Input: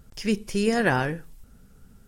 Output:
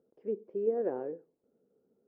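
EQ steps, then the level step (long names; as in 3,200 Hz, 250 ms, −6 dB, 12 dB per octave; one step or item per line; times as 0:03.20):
four-pole ladder band-pass 410 Hz, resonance 25%
high-frequency loss of the air 110 metres
parametric band 470 Hz +15 dB 1.2 octaves
−7.5 dB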